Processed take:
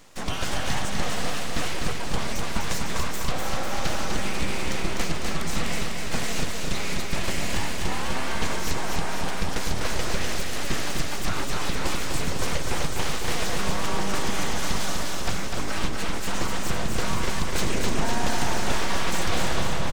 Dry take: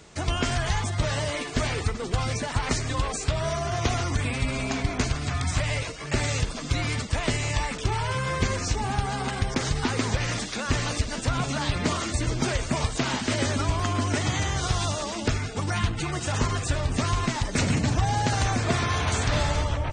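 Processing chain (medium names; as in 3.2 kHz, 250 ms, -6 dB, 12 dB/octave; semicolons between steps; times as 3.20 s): full-wave rectifier; feedback delay 250 ms, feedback 59%, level -4 dB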